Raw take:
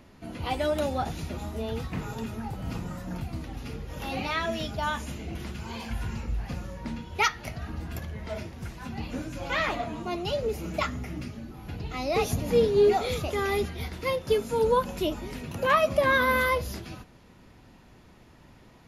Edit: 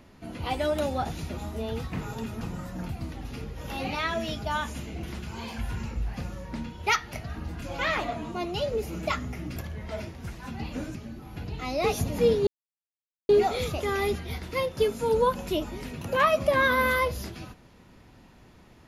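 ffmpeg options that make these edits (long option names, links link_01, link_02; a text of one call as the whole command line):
ffmpeg -i in.wav -filter_complex "[0:a]asplit=6[link_01][link_02][link_03][link_04][link_05][link_06];[link_01]atrim=end=2.412[link_07];[link_02]atrim=start=2.728:end=7.942[link_08];[link_03]atrim=start=9.328:end=11.272[link_09];[link_04]atrim=start=7.938:end=9.332[link_10];[link_05]atrim=start=11.268:end=12.79,asetpts=PTS-STARTPTS,afade=type=out:start_time=1.518:duration=0.004:curve=hsin,apad=pad_dur=0.82[link_11];[link_06]atrim=start=12.79,asetpts=PTS-STARTPTS,afade=type=in:duration=0.004:curve=hsin[link_12];[link_07][link_08]acrossfade=duration=0.004:curve1=hsin:curve2=hsin[link_13];[link_13][link_09]acrossfade=duration=0.004:curve1=hsin:curve2=hsin[link_14];[link_14][link_10]acrossfade=duration=0.004:curve1=hsin:curve2=hsin[link_15];[link_11][link_12]concat=n=2:v=0:a=1[link_16];[link_15][link_16]acrossfade=duration=0.004:curve1=hsin:curve2=hsin" out.wav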